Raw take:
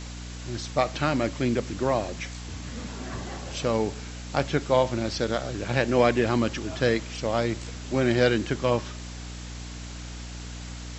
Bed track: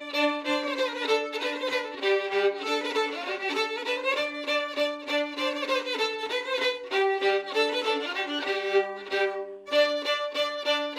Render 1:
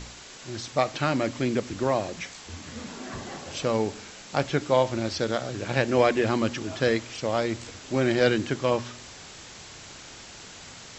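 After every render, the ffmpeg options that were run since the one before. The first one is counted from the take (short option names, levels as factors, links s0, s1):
-af "bandreject=f=60:t=h:w=4,bandreject=f=120:t=h:w=4,bandreject=f=180:t=h:w=4,bandreject=f=240:t=h:w=4,bandreject=f=300:t=h:w=4"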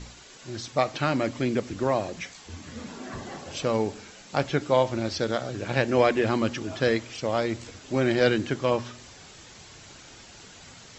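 -af "afftdn=nr=6:nf=-45"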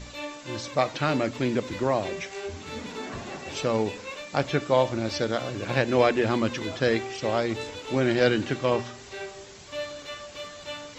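-filter_complex "[1:a]volume=0.266[s0];[0:a][s0]amix=inputs=2:normalize=0"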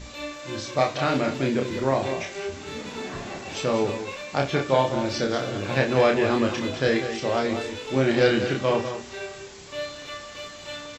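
-filter_complex "[0:a]asplit=2[s0][s1];[s1]adelay=30,volume=0.631[s2];[s0][s2]amix=inputs=2:normalize=0,aecho=1:1:59|196:0.2|0.335"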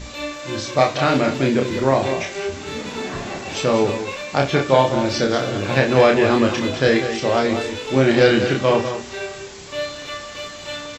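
-af "volume=2,alimiter=limit=0.891:level=0:latency=1"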